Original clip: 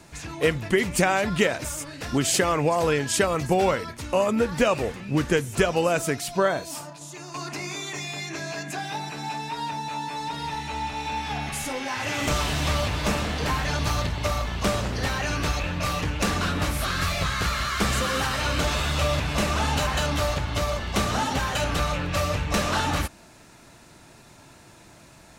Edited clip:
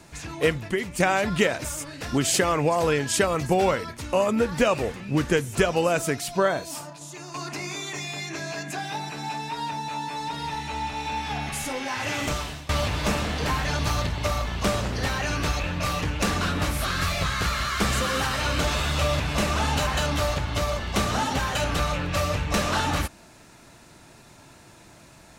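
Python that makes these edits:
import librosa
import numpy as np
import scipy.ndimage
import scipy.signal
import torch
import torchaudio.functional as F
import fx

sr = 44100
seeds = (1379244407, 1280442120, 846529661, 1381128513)

y = fx.edit(x, sr, fx.fade_out_to(start_s=0.48, length_s=0.52, curve='qua', floor_db=-7.0),
    fx.fade_out_to(start_s=12.13, length_s=0.56, floor_db=-23.0), tone=tone)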